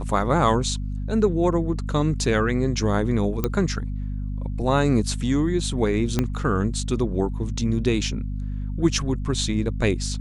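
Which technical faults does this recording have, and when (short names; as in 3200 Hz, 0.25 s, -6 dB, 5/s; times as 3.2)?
hum 50 Hz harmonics 5 -28 dBFS
3.44 pop -9 dBFS
6.19 pop -8 dBFS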